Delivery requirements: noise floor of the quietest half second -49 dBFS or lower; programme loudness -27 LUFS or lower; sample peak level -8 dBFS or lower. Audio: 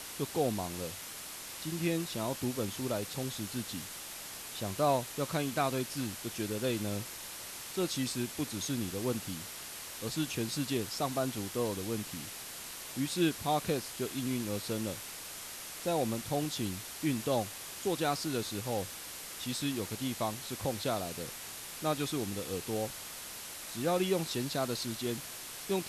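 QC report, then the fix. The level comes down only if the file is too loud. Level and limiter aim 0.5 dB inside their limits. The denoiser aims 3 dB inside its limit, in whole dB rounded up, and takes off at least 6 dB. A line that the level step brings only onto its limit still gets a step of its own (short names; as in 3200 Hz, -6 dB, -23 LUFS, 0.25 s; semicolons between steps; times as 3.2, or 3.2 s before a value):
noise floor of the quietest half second -45 dBFS: fail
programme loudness -35.0 LUFS: OK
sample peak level -16.5 dBFS: OK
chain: denoiser 7 dB, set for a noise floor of -45 dBFS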